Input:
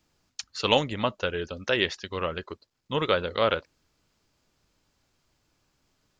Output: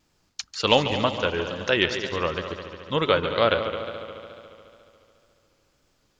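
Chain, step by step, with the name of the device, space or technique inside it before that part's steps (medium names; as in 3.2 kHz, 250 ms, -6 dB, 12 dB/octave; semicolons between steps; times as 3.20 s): multi-head tape echo (multi-head delay 71 ms, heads second and third, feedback 63%, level -12 dB; wow and flutter); trim +3 dB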